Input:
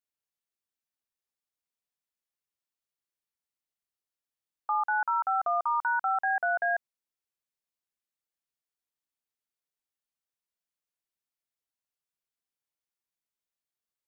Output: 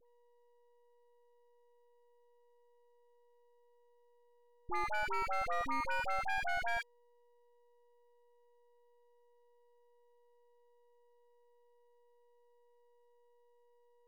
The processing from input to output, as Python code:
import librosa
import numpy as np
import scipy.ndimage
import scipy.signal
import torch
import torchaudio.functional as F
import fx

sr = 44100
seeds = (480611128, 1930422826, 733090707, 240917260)

y = x + 10.0 ** (-58.0 / 20.0) * np.sin(2.0 * np.pi * 480.0 * np.arange(len(x)) / sr)
y = np.maximum(y, 0.0)
y = fx.dispersion(y, sr, late='highs', ms=65.0, hz=1100.0)
y = y * librosa.db_to_amplitude(-4.0)